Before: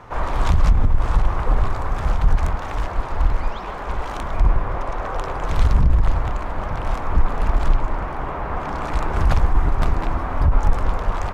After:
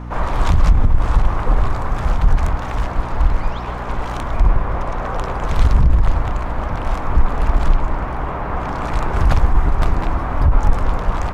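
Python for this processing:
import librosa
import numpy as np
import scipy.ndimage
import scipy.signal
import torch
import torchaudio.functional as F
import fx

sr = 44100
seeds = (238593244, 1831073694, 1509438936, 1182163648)

y = fx.add_hum(x, sr, base_hz=60, snr_db=15)
y = F.gain(torch.from_numpy(y), 2.5).numpy()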